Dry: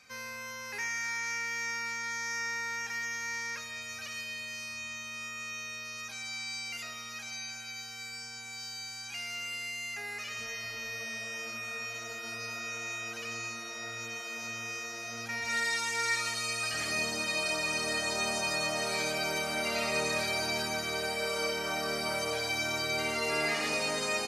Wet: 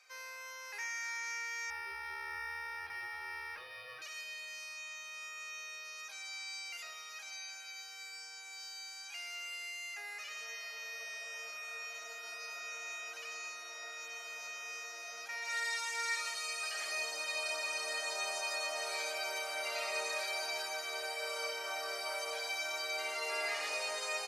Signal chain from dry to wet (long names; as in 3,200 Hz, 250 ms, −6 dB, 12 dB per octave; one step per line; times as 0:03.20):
high-pass filter 500 Hz 24 dB per octave
0:01.70–0:04.02: linearly interpolated sample-rate reduction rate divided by 6×
level −5.5 dB